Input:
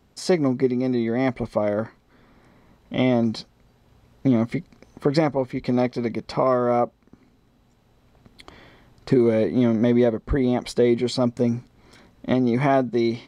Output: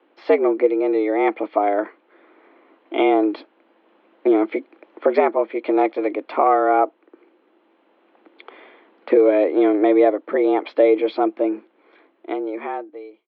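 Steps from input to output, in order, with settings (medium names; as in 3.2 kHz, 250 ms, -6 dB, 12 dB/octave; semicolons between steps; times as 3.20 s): fade out at the end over 2.36 s; mistuned SSB +93 Hz 200–3100 Hz; trim +4 dB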